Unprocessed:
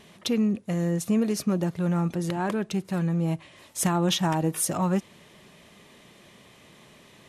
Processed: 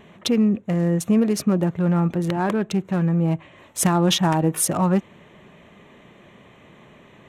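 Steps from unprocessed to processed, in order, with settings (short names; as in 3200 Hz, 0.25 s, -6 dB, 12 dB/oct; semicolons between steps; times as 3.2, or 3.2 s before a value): Wiener smoothing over 9 samples; gain +5.5 dB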